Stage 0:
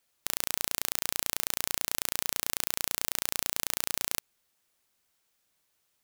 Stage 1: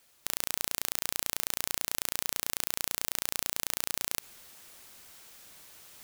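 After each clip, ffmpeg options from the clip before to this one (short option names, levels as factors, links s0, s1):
-af "areverse,acompressor=mode=upward:threshold=0.00282:ratio=2.5,areverse,alimiter=level_in=3.98:limit=0.891:release=50:level=0:latency=1,volume=0.841"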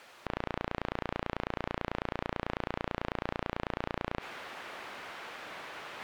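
-filter_complex "[0:a]aemphasis=mode=reproduction:type=cd,asplit=2[s0][s1];[s1]highpass=f=720:p=1,volume=25.1,asoftclip=type=tanh:threshold=0.282[s2];[s0][s2]amix=inputs=2:normalize=0,lowpass=f=1600:p=1,volume=0.501,acrossover=split=3600[s3][s4];[s4]acompressor=threshold=0.001:ratio=4:attack=1:release=60[s5];[s3][s5]amix=inputs=2:normalize=0"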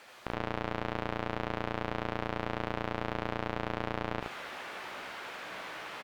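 -filter_complex "[0:a]asplit=2[s0][s1];[s1]adelay=16,volume=0.316[s2];[s0][s2]amix=inputs=2:normalize=0,aecho=1:1:78:0.631"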